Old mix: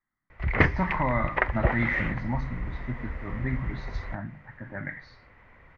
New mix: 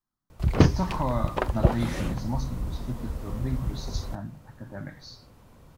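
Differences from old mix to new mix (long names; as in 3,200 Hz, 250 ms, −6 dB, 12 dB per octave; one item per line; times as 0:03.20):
background: add parametric band 180 Hz +8 dB 2.4 octaves
master: remove low-pass with resonance 2,000 Hz, resonance Q 8.3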